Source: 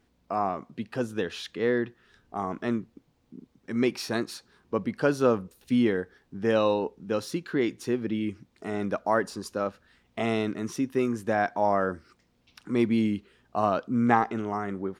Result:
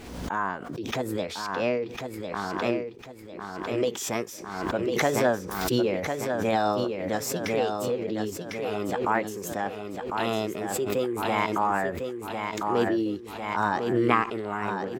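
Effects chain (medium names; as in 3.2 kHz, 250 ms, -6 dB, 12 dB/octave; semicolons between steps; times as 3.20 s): formant shift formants +5 st; feedback delay 1051 ms, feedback 36%, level -6 dB; swell ahead of each attack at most 47 dB/s; trim -1.5 dB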